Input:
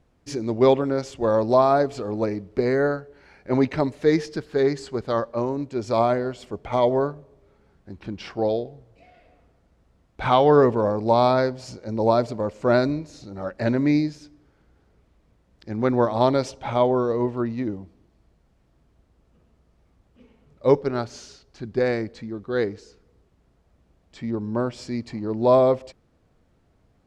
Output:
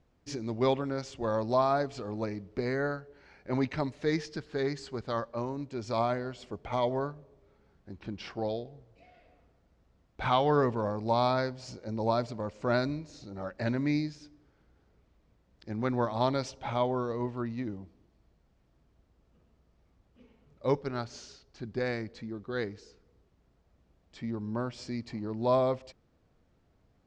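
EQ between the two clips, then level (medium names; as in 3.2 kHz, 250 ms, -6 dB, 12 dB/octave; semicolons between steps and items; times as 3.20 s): Chebyshev low-pass 6.2 kHz, order 2; dynamic bell 430 Hz, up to -6 dB, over -33 dBFS, Q 0.84; -4.5 dB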